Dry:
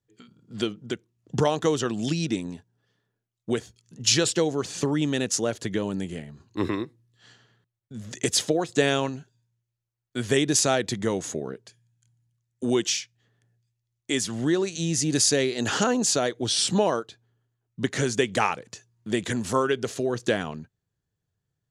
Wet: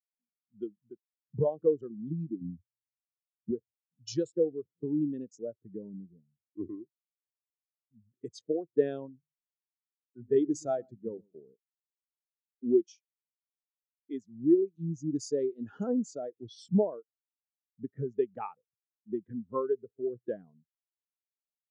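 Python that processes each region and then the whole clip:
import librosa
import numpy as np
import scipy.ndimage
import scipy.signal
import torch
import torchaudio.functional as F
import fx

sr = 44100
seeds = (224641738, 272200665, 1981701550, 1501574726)

y = fx.chain(x, sr, fx.riaa(side='playback'),
    fx.band_squash(depth_pct=40), at=(2.41, 3.51))
y = fx.chain(y, sr, fx.hum_notches(base_hz=50, count=5),
    fx.echo_single(ms=123, db=-13.5), at=(9.18, 11.38))
y = fx.wiener(y, sr, points=15)
y = fx.env_lowpass(y, sr, base_hz=1600.0, full_db=-20.0)
y = fx.spectral_expand(y, sr, expansion=2.5)
y = y * librosa.db_to_amplitude(-7.0)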